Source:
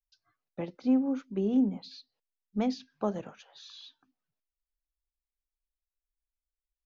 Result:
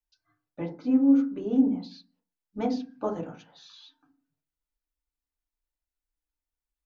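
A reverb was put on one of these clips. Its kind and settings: FDN reverb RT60 0.34 s, low-frequency decay 1.5×, high-frequency decay 0.25×, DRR -1.5 dB; trim -2.5 dB

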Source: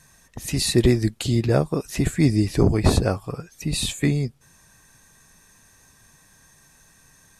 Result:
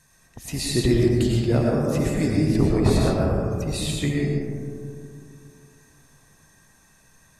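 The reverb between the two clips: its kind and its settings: algorithmic reverb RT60 2.4 s, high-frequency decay 0.25×, pre-delay 65 ms, DRR -3 dB; trim -5.5 dB

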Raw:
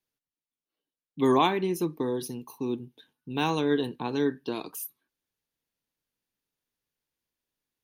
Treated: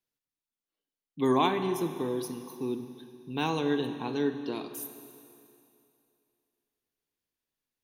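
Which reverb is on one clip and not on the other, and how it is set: Schroeder reverb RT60 2.6 s, combs from 31 ms, DRR 8.5 dB; trim -3 dB

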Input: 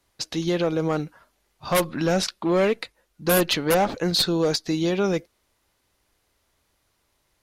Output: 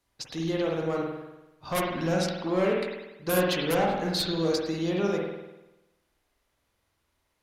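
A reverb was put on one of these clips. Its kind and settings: spring tank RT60 1 s, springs 49 ms, chirp 55 ms, DRR -1.5 dB; trim -8 dB

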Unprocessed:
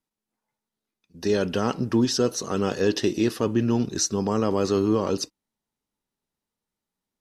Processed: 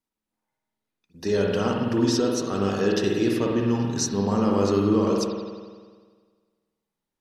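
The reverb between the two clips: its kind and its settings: spring tank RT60 1.6 s, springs 50 ms, chirp 40 ms, DRR -1 dB; trim -2.5 dB

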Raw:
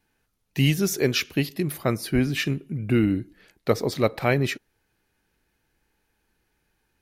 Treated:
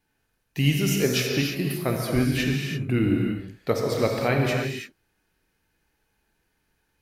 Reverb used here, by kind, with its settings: gated-style reverb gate 360 ms flat, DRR -0.5 dB; trim -3 dB

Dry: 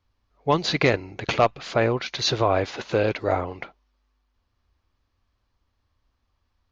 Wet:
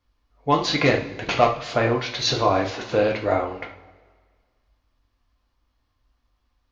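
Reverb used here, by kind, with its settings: two-slope reverb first 0.38 s, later 1.7 s, from -18 dB, DRR 0.5 dB; trim -1 dB

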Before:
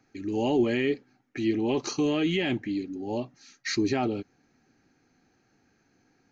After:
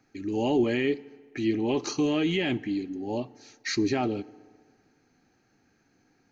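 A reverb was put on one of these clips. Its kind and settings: FDN reverb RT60 1.8 s, low-frequency decay 0.8×, high-frequency decay 0.65×, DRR 19.5 dB

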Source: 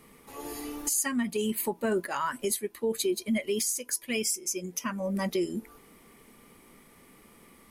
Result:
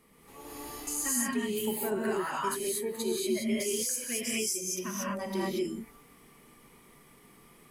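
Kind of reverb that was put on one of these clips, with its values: gated-style reverb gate 260 ms rising, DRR -6 dB; trim -8 dB

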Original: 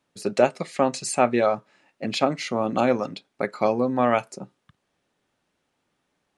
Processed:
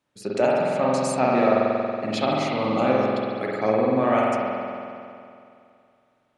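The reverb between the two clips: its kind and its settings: spring tank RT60 2.5 s, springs 46 ms, chirp 25 ms, DRR -5 dB; trim -4.5 dB

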